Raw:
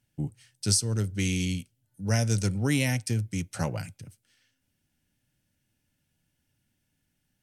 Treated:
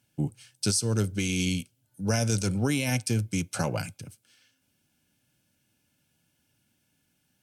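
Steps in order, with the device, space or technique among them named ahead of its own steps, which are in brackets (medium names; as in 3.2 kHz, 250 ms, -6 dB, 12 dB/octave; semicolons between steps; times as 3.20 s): PA system with an anti-feedback notch (high-pass 170 Hz 6 dB/octave; Butterworth band-stop 1.9 kHz, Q 7; peak limiter -22.5 dBFS, peak gain reduction 11 dB); trim +6 dB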